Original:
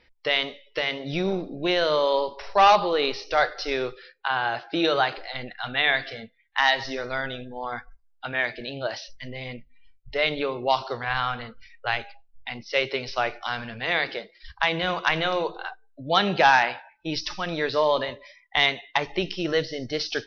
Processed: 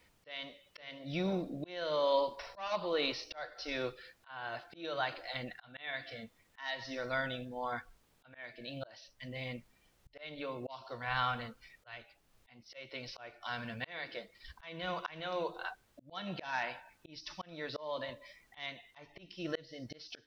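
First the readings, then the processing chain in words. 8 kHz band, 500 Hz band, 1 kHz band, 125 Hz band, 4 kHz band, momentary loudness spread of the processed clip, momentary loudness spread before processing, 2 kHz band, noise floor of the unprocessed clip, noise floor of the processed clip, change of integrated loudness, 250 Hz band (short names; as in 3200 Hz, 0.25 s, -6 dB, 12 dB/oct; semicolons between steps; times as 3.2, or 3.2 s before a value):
n/a, -13.0 dB, -16.5 dB, -10.0 dB, -15.5 dB, 17 LU, 14 LU, -16.0 dB, -61 dBFS, -71 dBFS, -14.5 dB, -11.5 dB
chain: notch comb 410 Hz; added noise pink -66 dBFS; auto swell 0.553 s; gain -5 dB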